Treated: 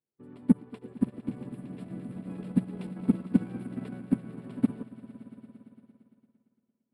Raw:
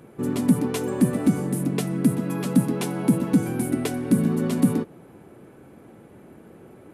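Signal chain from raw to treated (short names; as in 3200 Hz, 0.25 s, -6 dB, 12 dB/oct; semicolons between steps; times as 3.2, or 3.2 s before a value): 0.77–2.96 bell 1200 Hz -5 dB 1.2 oct; level quantiser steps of 14 dB; running mean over 7 samples; swelling echo 0.114 s, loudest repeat 5, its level -10.5 dB; upward expander 2.5:1, over -42 dBFS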